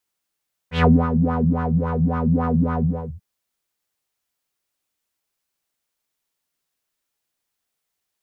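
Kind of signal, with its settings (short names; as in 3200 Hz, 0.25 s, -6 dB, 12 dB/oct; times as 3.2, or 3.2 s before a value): synth patch with filter wobble E3, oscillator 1 triangle, interval +7 st, oscillator 2 level -0.5 dB, sub -3 dB, noise -10.5 dB, filter lowpass, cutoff 200 Hz, Q 4.1, filter envelope 3 oct, attack 0.136 s, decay 0.23 s, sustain -9 dB, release 0.38 s, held 2.11 s, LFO 3.6 Hz, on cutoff 1.5 oct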